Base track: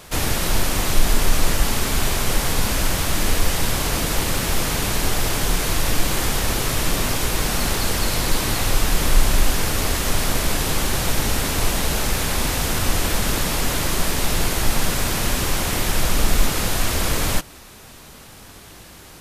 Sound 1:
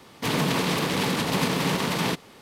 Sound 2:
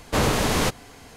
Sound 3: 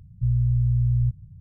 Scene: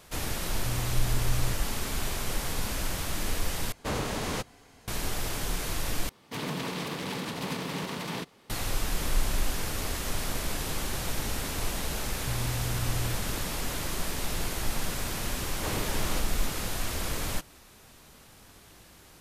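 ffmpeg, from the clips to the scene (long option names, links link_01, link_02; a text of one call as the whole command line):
ffmpeg -i bed.wav -i cue0.wav -i cue1.wav -i cue2.wav -filter_complex "[3:a]asplit=2[link_01][link_02];[2:a]asplit=2[link_03][link_04];[0:a]volume=-11dB[link_05];[link_02]acompressor=threshold=-27dB:ratio=6:attack=3.2:release=140:knee=1:detection=peak[link_06];[link_05]asplit=3[link_07][link_08][link_09];[link_07]atrim=end=3.724[link_10];[link_03]atrim=end=1.16,asetpts=PTS-STARTPTS,volume=-10dB[link_11];[link_08]atrim=start=4.876:end=6.094[link_12];[1:a]atrim=end=2.41,asetpts=PTS-STARTPTS,volume=-9.5dB[link_13];[link_09]atrim=start=8.496[link_14];[link_01]atrim=end=1.4,asetpts=PTS-STARTPTS,volume=-12dB,afade=type=in:duration=0.004:curve=hsin,afade=type=out:start_time=1.396:duration=0.004:curve=hsin,adelay=430[link_15];[link_06]atrim=end=1.4,asetpts=PTS-STARTPTS,volume=-3.5dB,afade=type=in:duration=0.004:curve=hsin,afade=type=out:start_time=1.396:duration=0.004:curve=hsin,adelay=12060[link_16];[link_04]atrim=end=1.16,asetpts=PTS-STARTPTS,volume=-13.5dB,afade=type=in:duration=0.004:curve=hsin,afade=type=out:start_time=1.156:duration=0.004:curve=hsin,adelay=15500[link_17];[link_10][link_11]acrossfade=duration=0.004:curve1=hsin:curve2=hsin[link_18];[link_18][link_12]acrossfade=duration=0.004:curve1=hsin:curve2=hsin[link_19];[link_19][link_13]acrossfade=duration=0.004:curve1=hsin:curve2=hsin[link_20];[link_20][link_14]acrossfade=duration=0.004:curve1=hsin:curve2=hsin[link_21];[link_21][link_15][link_16][link_17]amix=inputs=4:normalize=0" out.wav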